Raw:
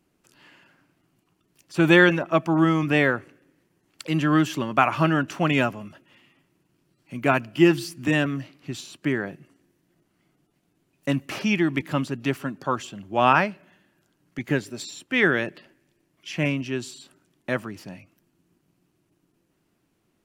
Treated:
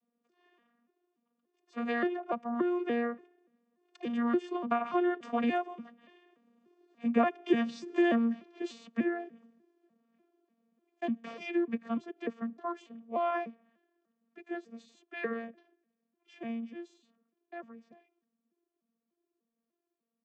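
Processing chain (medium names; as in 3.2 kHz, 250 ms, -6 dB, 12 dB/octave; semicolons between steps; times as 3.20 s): vocoder on a broken chord bare fifth, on A#3, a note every 293 ms; Doppler pass-by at 7.49 s, 5 m/s, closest 5.7 m; high-pass 170 Hz; treble shelf 3.1 kHz -8 dB; comb 1.7 ms, depth 47%; compression 2:1, threshold -37 dBFS, peak gain reduction 11 dB; trim +7.5 dB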